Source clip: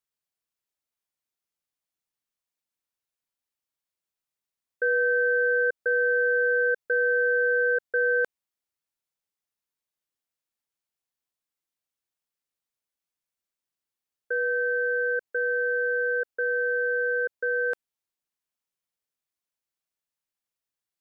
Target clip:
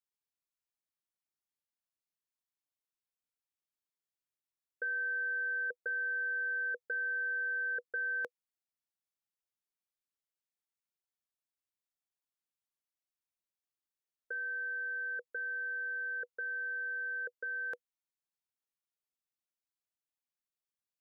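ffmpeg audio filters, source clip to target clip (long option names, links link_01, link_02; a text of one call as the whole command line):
ffmpeg -i in.wav -af "bandreject=frequency=490:width=12,volume=-9dB" out.wav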